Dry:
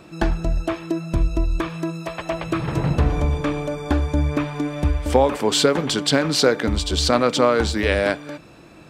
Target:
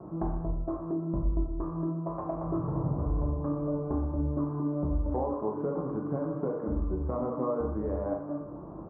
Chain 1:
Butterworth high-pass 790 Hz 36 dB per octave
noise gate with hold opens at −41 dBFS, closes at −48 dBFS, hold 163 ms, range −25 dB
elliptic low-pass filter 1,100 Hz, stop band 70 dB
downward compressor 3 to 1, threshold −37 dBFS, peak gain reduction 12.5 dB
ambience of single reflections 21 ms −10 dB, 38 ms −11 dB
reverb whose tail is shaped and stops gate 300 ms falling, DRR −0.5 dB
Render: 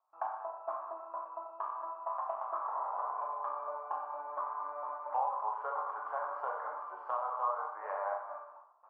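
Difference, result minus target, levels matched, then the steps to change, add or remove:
1,000 Hz band +12.5 dB
remove: Butterworth high-pass 790 Hz 36 dB per octave

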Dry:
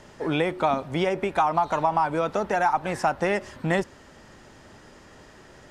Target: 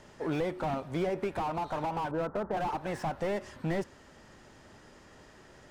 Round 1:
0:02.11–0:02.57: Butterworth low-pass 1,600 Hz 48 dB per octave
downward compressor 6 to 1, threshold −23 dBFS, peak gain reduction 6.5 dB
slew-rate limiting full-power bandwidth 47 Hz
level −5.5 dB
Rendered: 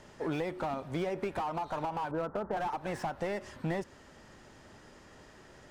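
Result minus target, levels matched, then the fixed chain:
downward compressor: peak gain reduction +6.5 dB
0:02.11–0:02.57: Butterworth low-pass 1,600 Hz 48 dB per octave
slew-rate limiting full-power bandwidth 47 Hz
level −5.5 dB

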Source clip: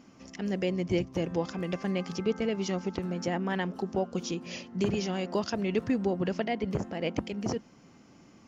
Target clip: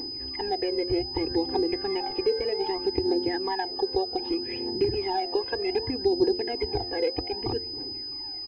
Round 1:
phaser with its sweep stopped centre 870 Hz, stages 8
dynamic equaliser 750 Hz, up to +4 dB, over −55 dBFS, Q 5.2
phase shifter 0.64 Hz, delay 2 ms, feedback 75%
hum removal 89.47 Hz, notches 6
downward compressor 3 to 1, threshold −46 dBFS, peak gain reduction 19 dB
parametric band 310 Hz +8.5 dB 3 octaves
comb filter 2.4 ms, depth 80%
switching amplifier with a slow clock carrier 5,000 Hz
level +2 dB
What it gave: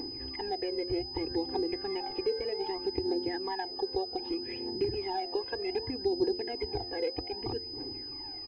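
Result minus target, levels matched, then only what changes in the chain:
downward compressor: peak gain reduction +6 dB
change: downward compressor 3 to 1, threshold −37 dBFS, peak gain reduction 13 dB

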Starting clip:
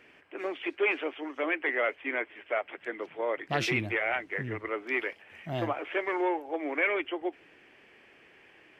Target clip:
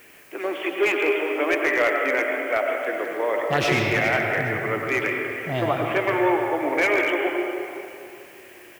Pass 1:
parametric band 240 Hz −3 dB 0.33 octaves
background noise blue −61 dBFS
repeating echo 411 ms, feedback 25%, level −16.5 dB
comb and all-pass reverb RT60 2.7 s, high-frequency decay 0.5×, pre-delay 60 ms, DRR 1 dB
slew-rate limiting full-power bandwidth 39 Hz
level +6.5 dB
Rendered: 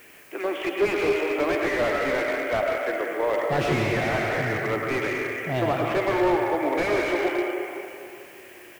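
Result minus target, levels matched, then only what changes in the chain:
slew-rate limiting: distortion +12 dB
change: slew-rate limiting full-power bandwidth 121.5 Hz

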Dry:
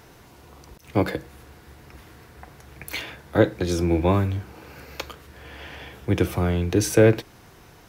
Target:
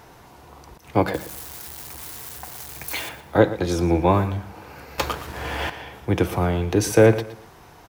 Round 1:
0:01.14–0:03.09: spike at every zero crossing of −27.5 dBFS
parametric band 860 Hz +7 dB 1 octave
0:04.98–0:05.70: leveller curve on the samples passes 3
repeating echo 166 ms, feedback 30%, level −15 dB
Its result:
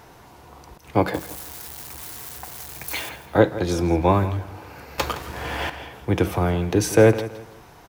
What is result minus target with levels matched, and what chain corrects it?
echo 49 ms late
0:01.14–0:03.09: spike at every zero crossing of −27.5 dBFS
parametric band 860 Hz +7 dB 1 octave
0:04.98–0:05.70: leveller curve on the samples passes 3
repeating echo 117 ms, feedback 30%, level −15 dB

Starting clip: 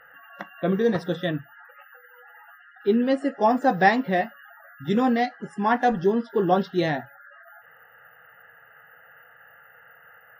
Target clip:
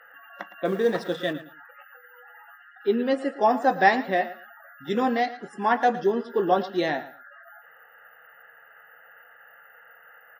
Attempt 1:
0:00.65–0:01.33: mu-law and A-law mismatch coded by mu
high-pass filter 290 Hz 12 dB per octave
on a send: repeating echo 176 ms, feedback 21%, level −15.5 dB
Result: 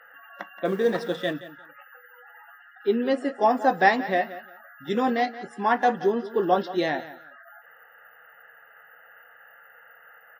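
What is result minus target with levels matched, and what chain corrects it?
echo 64 ms late
0:00.65–0:01.33: mu-law and A-law mismatch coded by mu
high-pass filter 290 Hz 12 dB per octave
on a send: repeating echo 112 ms, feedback 21%, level −15.5 dB

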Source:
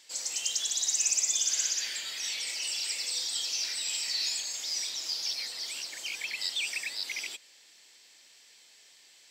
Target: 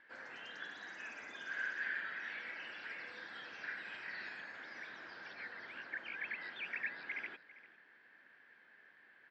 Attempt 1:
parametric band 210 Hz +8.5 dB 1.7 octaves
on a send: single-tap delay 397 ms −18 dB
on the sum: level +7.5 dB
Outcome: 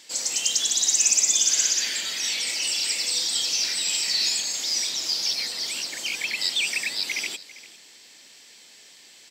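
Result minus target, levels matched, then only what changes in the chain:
2,000 Hz band −13.0 dB
add first: transistor ladder low-pass 1,700 Hz, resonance 80%

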